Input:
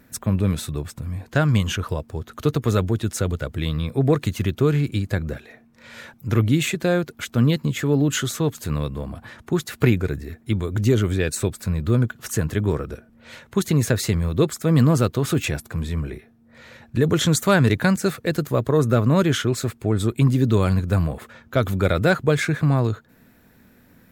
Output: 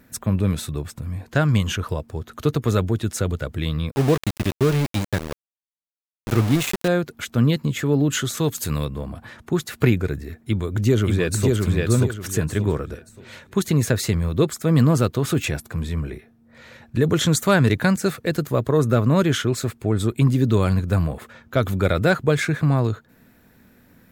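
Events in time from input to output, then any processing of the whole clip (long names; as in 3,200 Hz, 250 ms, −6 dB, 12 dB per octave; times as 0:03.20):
0:03.91–0:06.88: centre clipping without the shift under −22.5 dBFS
0:08.37–0:08.85: high-shelf EQ 3,400 Hz +10.5 dB
0:10.39–0:11.55: delay throw 580 ms, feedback 30%, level −2 dB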